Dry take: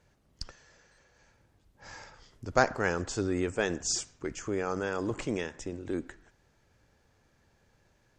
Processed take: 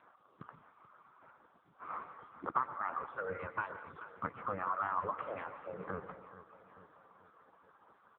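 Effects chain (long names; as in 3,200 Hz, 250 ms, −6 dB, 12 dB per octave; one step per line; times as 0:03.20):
gate on every frequency bin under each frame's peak −10 dB weak
reverb reduction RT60 1.3 s
0:03.16–0:03.84: comb filter 2 ms, depth 86%
0:04.55–0:05.42: parametric band 91 Hz −4.5 dB 2.1 octaves
downward compressor 16 to 1, threshold −45 dBFS, peak gain reduction 21 dB
low-pass with resonance 1,200 Hz, resonance Q 5.4
0:02.02–0:02.63: floating-point word with a short mantissa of 4 bits
repeating echo 434 ms, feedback 54%, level −14 dB
dense smooth reverb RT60 0.56 s, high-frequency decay 0.95×, pre-delay 110 ms, DRR 9.5 dB
level +8.5 dB
AMR narrowband 6.7 kbit/s 8,000 Hz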